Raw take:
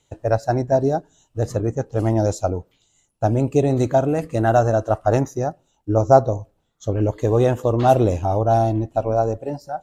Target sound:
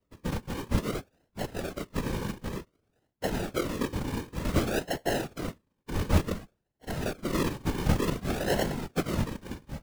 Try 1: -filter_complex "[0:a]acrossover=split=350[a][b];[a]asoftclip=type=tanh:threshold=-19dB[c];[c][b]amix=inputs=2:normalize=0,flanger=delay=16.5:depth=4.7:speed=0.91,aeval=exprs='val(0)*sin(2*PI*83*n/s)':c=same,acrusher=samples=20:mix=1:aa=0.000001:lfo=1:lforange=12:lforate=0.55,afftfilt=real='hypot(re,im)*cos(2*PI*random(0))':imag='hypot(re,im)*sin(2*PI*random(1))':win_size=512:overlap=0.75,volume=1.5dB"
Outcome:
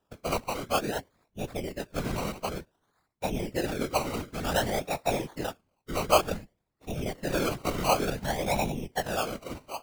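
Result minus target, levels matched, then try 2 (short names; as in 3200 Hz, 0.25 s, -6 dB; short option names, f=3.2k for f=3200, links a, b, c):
decimation with a swept rate: distortion -14 dB
-filter_complex "[0:a]acrossover=split=350[a][b];[a]asoftclip=type=tanh:threshold=-19dB[c];[c][b]amix=inputs=2:normalize=0,flanger=delay=16.5:depth=4.7:speed=0.91,aeval=exprs='val(0)*sin(2*PI*83*n/s)':c=same,acrusher=samples=52:mix=1:aa=0.000001:lfo=1:lforange=31.2:lforate=0.55,afftfilt=real='hypot(re,im)*cos(2*PI*random(0))':imag='hypot(re,im)*sin(2*PI*random(1))':win_size=512:overlap=0.75,volume=1.5dB"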